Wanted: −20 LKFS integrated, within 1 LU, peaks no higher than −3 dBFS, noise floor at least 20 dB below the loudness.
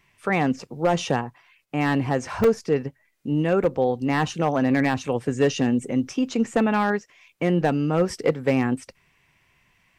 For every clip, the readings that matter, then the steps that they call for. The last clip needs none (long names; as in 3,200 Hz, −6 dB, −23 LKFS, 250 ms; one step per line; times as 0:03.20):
share of clipped samples 0.4%; peaks flattened at −11.5 dBFS; number of dropouts 2; longest dropout 3.1 ms; integrated loudness −23.5 LKFS; sample peak −11.5 dBFS; target loudness −20.0 LKFS
→ clipped peaks rebuilt −11.5 dBFS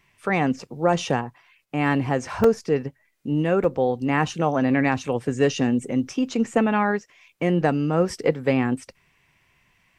share of clipped samples 0.0%; number of dropouts 2; longest dropout 3.1 ms
→ repair the gap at 0:02.44/0:03.64, 3.1 ms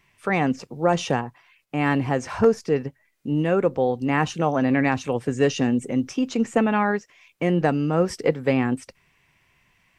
number of dropouts 0; integrated loudness −23.0 LKFS; sample peak −4.0 dBFS; target loudness −20.0 LKFS
→ level +3 dB
brickwall limiter −3 dBFS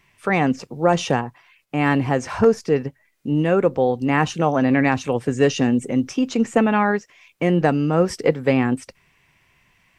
integrated loudness −20.0 LKFS; sample peak −3.0 dBFS; background noise floor −62 dBFS